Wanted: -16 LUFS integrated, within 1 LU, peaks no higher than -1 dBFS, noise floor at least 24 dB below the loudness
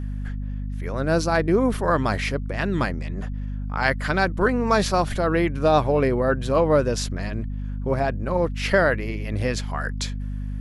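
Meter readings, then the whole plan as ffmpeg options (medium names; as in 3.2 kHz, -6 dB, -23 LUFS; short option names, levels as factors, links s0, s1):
hum 50 Hz; highest harmonic 250 Hz; hum level -26 dBFS; loudness -23.5 LUFS; peak level -5.5 dBFS; loudness target -16.0 LUFS
-> -af "bandreject=f=50:t=h:w=4,bandreject=f=100:t=h:w=4,bandreject=f=150:t=h:w=4,bandreject=f=200:t=h:w=4,bandreject=f=250:t=h:w=4"
-af "volume=2.37,alimiter=limit=0.891:level=0:latency=1"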